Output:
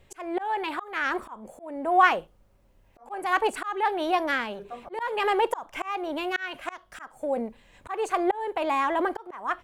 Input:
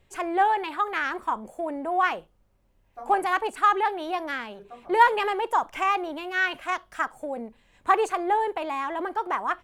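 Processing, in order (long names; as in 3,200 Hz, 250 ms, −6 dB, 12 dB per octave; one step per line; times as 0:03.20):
parametric band 550 Hz +3 dB 0.28 octaves
volume swells 389 ms
level +4.5 dB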